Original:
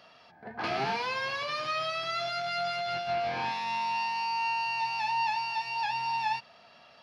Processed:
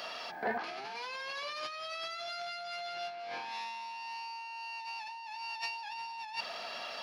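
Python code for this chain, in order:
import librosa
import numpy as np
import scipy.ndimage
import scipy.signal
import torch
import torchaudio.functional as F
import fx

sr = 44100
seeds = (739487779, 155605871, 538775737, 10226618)

y = scipy.signal.sosfilt(scipy.signal.butter(2, 320.0, 'highpass', fs=sr, output='sos'), x)
y = fx.high_shelf(y, sr, hz=4900.0, db=7.5)
y = fx.over_compress(y, sr, threshold_db=-43.0, ratio=-1.0)
y = F.gain(torch.from_numpy(y), 2.0).numpy()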